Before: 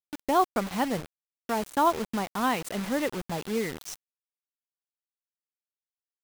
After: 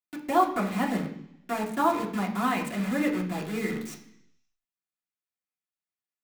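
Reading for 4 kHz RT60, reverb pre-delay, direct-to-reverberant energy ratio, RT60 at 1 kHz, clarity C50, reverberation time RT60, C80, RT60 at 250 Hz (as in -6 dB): 1.0 s, 3 ms, -3.0 dB, 0.70 s, 9.0 dB, 0.70 s, 11.5 dB, 0.90 s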